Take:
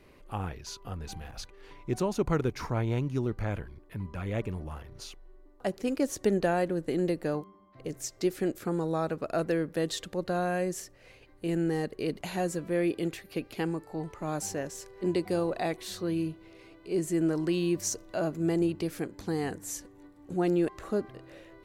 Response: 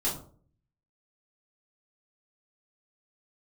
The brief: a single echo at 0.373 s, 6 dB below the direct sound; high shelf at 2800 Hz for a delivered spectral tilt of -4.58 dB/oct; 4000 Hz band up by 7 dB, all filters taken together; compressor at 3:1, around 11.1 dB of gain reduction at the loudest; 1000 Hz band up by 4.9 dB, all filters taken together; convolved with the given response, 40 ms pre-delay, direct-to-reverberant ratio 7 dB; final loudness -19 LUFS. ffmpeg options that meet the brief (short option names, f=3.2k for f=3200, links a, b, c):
-filter_complex "[0:a]equalizer=f=1k:t=o:g=6.5,highshelf=f=2.8k:g=3.5,equalizer=f=4k:t=o:g=5.5,acompressor=threshold=-36dB:ratio=3,aecho=1:1:373:0.501,asplit=2[a][b];[1:a]atrim=start_sample=2205,adelay=40[c];[b][c]afir=irnorm=-1:irlink=0,volume=-14dB[d];[a][d]amix=inputs=2:normalize=0,volume=17.5dB"